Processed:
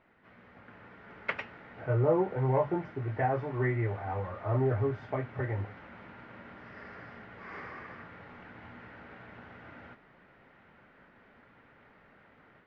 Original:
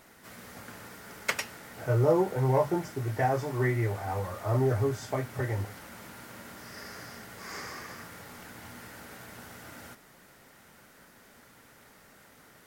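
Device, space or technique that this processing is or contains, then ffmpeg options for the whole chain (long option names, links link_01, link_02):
action camera in a waterproof case: -af "lowpass=frequency=2700:width=0.5412,lowpass=frequency=2700:width=1.3066,dynaudnorm=framelen=600:gausssize=3:maxgain=6.5dB,volume=-8.5dB" -ar 32000 -c:a aac -b:a 64k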